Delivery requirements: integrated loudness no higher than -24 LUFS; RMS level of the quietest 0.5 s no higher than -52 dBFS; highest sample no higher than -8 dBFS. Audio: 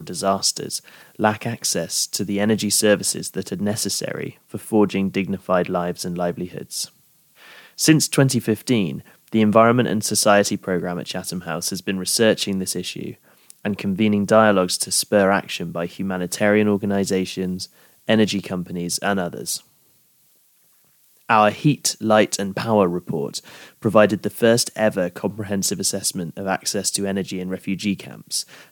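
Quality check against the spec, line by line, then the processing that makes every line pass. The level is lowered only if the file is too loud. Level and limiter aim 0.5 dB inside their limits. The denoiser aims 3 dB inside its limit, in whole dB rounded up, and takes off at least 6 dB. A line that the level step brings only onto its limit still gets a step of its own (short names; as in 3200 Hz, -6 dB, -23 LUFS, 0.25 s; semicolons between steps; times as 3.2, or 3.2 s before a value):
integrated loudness -20.5 LUFS: fail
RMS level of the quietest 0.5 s -59 dBFS: OK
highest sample -2.0 dBFS: fail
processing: gain -4 dB; limiter -8.5 dBFS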